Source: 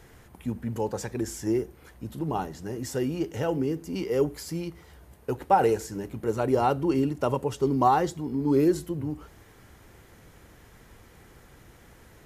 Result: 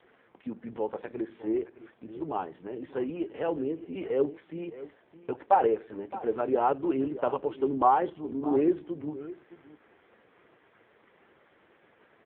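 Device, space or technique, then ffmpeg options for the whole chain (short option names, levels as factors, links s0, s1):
satellite phone: -af "highpass=310,lowpass=3300,aecho=1:1:615:0.168" -ar 8000 -c:a libopencore_amrnb -b:a 4750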